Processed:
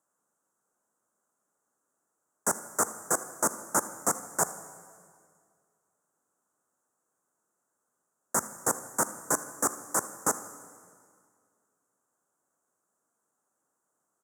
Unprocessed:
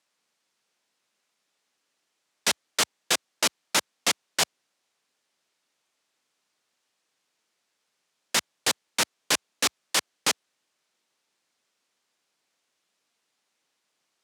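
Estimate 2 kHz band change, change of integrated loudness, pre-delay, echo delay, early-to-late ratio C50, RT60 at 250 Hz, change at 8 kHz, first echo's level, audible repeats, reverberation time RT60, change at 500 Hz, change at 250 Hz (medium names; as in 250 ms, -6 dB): -8.5 dB, -3.5 dB, 12 ms, 79 ms, 12.0 dB, 2.2 s, -0.5 dB, -18.5 dB, 1, 2.1 s, +1.0 dB, +1.5 dB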